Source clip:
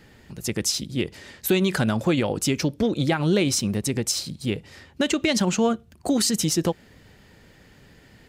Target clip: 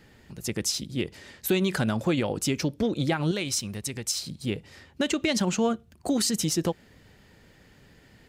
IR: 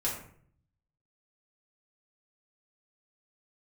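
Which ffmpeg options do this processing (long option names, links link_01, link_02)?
-filter_complex "[0:a]asettb=1/sr,asplit=3[link_01][link_02][link_03];[link_01]atrim=end=3.314[link_04];[link_02]atrim=start=3.31:end=4.23,asetpts=PTS-STARTPTS,afade=type=in:duration=0.004:curve=qsin,afade=type=out:start_time=0.916:duration=0.004:curve=qsin,equalizer=frequency=290:width=0.38:gain=-8.5[link_05];[link_03]atrim=start=4.226[link_06];[link_04][link_05]acrossfade=duration=0.004:curve1=hsin:curve2=qsin[link_07];[link_07][link_06]acrossfade=duration=0.004:curve1=qsin:curve2=hsin,volume=-3.5dB"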